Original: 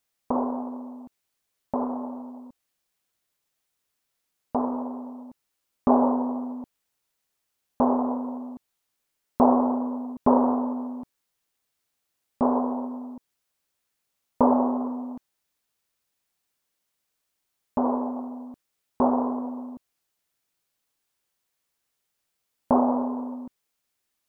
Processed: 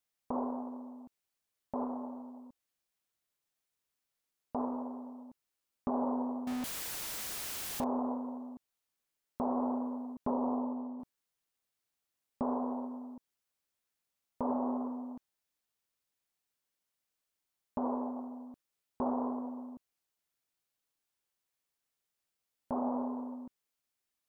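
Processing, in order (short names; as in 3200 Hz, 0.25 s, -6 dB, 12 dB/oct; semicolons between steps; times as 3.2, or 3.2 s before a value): 6.47–7.84 zero-crossing step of -25.5 dBFS; 10.3–11 LPF 1200 Hz 24 dB/oct; limiter -16.5 dBFS, peak gain reduction 11 dB; gain -8 dB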